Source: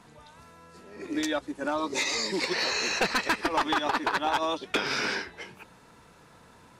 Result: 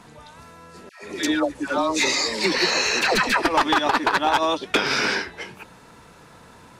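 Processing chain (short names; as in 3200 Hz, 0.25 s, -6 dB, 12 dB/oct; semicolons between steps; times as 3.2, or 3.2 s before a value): 0.89–3.42 dispersion lows, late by 0.141 s, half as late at 830 Hz; gain +7 dB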